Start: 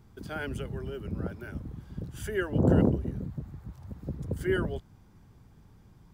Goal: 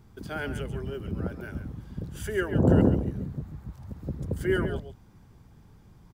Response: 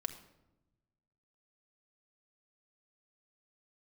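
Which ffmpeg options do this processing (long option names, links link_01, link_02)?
-af "aecho=1:1:137:0.299,volume=2dB"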